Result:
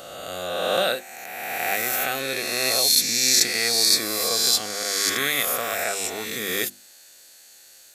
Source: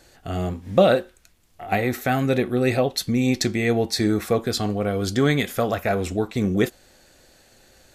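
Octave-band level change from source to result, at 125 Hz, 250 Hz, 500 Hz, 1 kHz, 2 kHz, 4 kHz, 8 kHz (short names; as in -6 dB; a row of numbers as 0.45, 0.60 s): -19.5, -14.0, -6.5, -2.0, +3.5, +10.5, +14.0 dB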